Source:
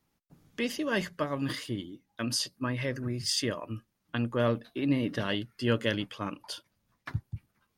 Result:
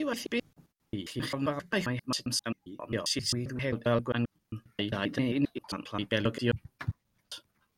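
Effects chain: slices played last to first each 133 ms, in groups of 7

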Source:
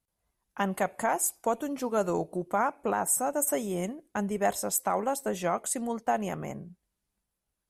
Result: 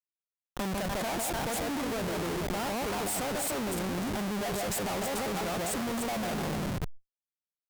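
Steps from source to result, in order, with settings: bass shelf 110 Hz +7 dB; on a send: echo whose repeats swap between lows and highs 149 ms, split 800 Hz, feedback 54%, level -2.5 dB; on the sum: Schmitt trigger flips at -37.5 dBFS; Chebyshev shaper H 3 -16 dB, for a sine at -23 dBFS; decay stretcher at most 87 dB/s

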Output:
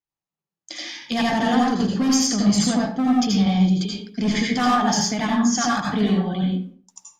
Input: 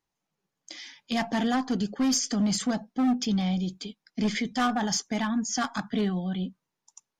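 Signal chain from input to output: gate with hold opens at -45 dBFS; in parallel at +1.5 dB: compression, threshold -34 dBFS, peak gain reduction 11.5 dB; on the sum: reverberation RT60 0.45 s, pre-delay 73 ms, DRR -3 dB

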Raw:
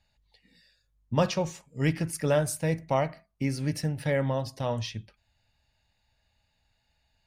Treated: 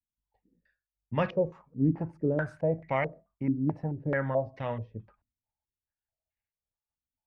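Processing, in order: expander -57 dBFS; step-sequenced low-pass 4.6 Hz 270–2100 Hz; trim -4.5 dB

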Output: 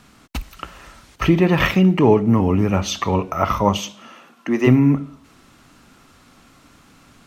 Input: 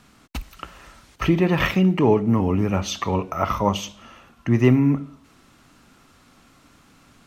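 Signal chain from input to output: 3.77–4.66 s: high-pass 120 Hz -> 270 Hz 24 dB/octave; trim +3.5 dB

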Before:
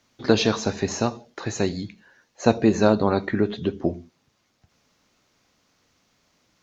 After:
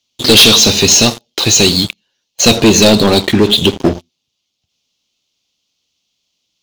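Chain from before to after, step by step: resonant high shelf 2.3 kHz +10.5 dB, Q 3; waveshaping leveller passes 5; trim -3 dB

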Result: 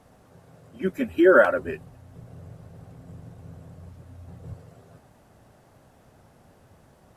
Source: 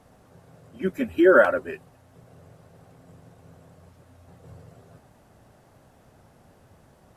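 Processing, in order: 1.59–4.54 s: bass shelf 210 Hz +11.5 dB

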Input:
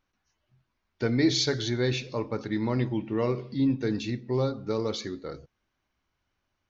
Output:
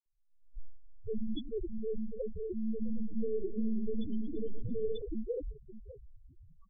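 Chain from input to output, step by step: recorder AGC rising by 60 dB/s; delay 580 ms -13.5 dB; simulated room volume 3700 m³, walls furnished, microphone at 0.93 m; monotone LPC vocoder at 8 kHz 220 Hz; peak limiter -20 dBFS, peak gain reduction 9 dB; loudest bins only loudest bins 2; dynamic bell 580 Hz, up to +6 dB, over -56 dBFS, Q 4.8; phase dispersion lows, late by 60 ms, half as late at 1.4 kHz; 2.70–5.02 s: modulated delay 113 ms, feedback 71%, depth 176 cents, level -14 dB

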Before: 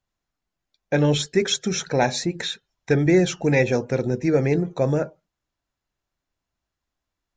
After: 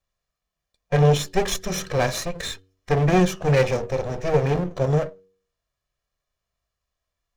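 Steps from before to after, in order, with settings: comb filter that takes the minimum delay 1.7 ms; de-hum 94.66 Hz, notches 5; harmonic-percussive split percussive -7 dB; trim +4.5 dB

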